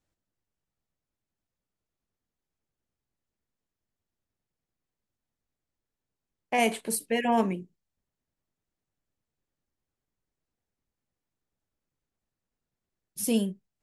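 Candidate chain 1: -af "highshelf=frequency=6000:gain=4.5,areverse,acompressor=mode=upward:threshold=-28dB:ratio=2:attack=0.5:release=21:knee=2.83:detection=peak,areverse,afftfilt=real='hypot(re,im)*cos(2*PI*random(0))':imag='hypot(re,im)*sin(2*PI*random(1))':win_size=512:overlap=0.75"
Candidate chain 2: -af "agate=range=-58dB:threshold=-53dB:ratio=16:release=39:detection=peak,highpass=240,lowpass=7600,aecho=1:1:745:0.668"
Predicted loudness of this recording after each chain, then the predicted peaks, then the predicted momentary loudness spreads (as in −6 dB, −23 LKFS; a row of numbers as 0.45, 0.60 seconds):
−33.5, −29.5 LKFS; −16.0, −9.5 dBFS; 12, 11 LU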